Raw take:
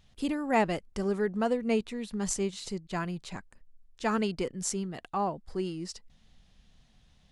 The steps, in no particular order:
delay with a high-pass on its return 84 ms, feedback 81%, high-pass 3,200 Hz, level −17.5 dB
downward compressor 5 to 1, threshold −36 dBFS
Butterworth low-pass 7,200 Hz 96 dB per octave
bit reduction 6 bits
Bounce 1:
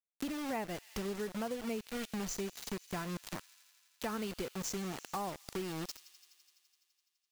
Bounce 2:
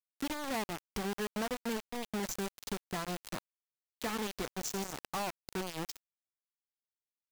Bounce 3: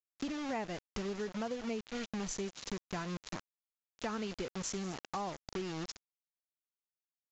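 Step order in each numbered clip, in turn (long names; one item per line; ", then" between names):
Butterworth low-pass, then bit reduction, then delay with a high-pass on its return, then downward compressor
Butterworth low-pass, then downward compressor, then delay with a high-pass on its return, then bit reduction
delay with a high-pass on its return, then bit reduction, then Butterworth low-pass, then downward compressor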